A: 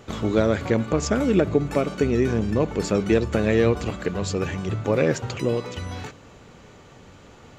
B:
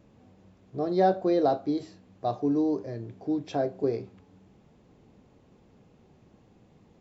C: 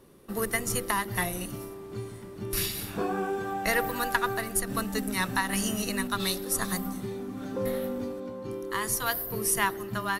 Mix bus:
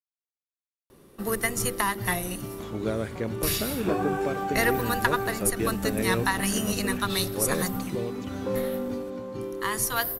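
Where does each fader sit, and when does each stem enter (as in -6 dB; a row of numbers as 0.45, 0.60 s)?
-9.5 dB, off, +2.0 dB; 2.50 s, off, 0.90 s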